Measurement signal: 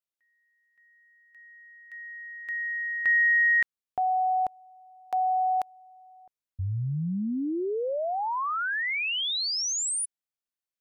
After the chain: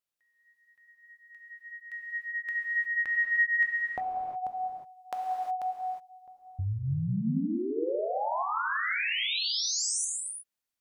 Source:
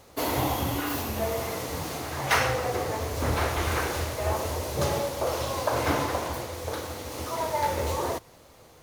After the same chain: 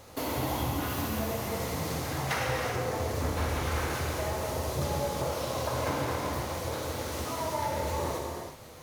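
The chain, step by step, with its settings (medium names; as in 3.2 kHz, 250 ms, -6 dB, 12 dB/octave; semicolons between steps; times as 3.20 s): dynamic bell 170 Hz, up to +5 dB, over -44 dBFS, Q 1.1; compression 2.5:1, threshold -37 dBFS; vibrato 4.8 Hz 8.1 cents; gated-style reverb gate 390 ms flat, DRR -0.5 dB; trim +1.5 dB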